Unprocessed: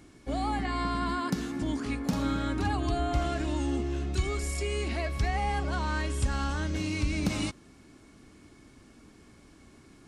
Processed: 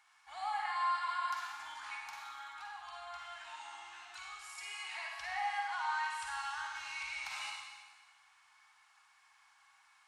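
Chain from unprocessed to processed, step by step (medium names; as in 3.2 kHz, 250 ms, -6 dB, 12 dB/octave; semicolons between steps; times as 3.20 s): elliptic high-pass 830 Hz, stop band 40 dB; treble shelf 3.7 kHz -9 dB; 2.00–4.58 s: compression, threshold -44 dBFS, peak gain reduction 11.5 dB; reverberation RT60 1.4 s, pre-delay 42 ms, DRR -0.5 dB; trim -3.5 dB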